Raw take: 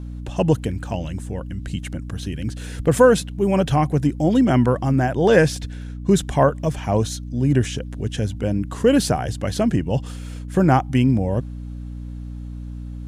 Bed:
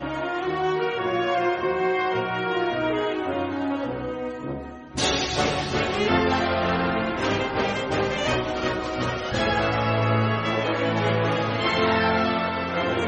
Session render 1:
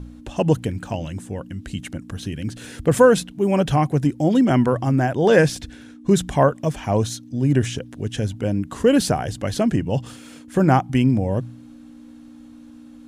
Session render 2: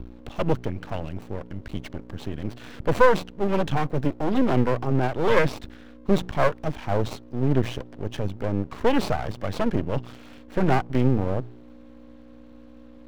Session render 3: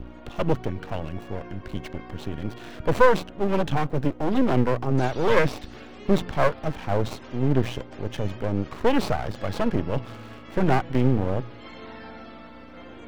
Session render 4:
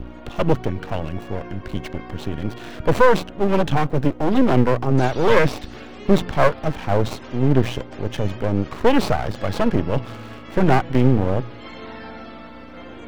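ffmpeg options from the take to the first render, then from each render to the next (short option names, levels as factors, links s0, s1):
-af "bandreject=f=60:t=h:w=4,bandreject=f=120:t=h:w=4,bandreject=f=180:t=h:w=4"
-filter_complex "[0:a]acrossover=split=380|570|4500[s0][s1][s2][s3];[s3]acrusher=samples=26:mix=1:aa=0.000001[s4];[s0][s1][s2][s4]amix=inputs=4:normalize=0,aeval=exprs='max(val(0),0)':c=same"
-filter_complex "[1:a]volume=0.0891[s0];[0:a][s0]amix=inputs=2:normalize=0"
-af "volume=1.78,alimiter=limit=0.891:level=0:latency=1"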